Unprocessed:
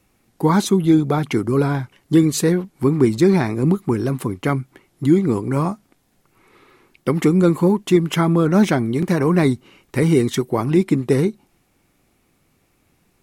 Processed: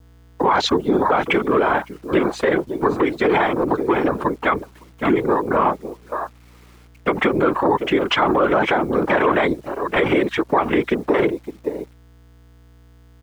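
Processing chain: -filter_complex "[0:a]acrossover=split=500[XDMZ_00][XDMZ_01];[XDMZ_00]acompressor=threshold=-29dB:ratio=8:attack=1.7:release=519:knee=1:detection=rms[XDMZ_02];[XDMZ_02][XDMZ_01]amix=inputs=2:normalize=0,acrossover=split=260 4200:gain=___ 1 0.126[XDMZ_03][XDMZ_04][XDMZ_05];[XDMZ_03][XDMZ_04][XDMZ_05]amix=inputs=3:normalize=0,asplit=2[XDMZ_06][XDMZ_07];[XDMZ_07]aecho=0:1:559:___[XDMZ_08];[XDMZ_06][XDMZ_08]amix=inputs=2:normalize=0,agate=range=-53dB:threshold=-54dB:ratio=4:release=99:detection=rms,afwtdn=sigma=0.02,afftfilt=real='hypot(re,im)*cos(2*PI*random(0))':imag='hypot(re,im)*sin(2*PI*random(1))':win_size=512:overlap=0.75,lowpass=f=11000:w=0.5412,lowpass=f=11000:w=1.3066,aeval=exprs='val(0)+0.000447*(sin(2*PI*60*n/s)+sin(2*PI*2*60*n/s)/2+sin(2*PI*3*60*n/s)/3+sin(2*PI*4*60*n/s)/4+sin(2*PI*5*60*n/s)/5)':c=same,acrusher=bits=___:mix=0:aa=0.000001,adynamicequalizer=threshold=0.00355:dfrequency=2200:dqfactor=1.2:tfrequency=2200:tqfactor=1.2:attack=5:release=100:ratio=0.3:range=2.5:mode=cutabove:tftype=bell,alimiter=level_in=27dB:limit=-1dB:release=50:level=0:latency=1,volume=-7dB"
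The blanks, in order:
0.2, 0.237, 11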